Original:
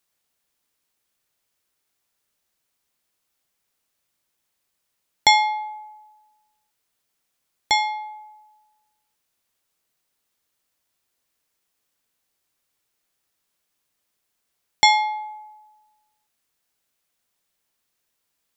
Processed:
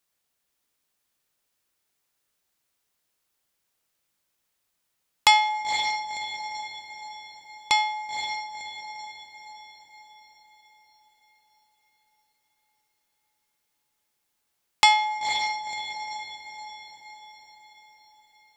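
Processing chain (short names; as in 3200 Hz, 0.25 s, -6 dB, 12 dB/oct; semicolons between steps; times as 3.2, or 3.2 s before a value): diffused feedback echo 0.518 s, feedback 52%, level -6.5 dB; on a send at -17 dB: reverb RT60 4.0 s, pre-delay 69 ms; on the sum: Doppler distortion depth 0.55 ms; gain -2 dB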